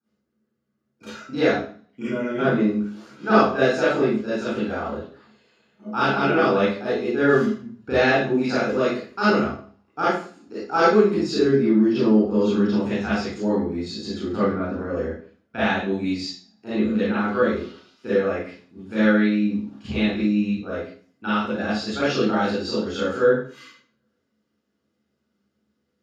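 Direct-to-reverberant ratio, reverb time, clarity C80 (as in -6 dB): -11.5 dB, 0.45 s, 3.5 dB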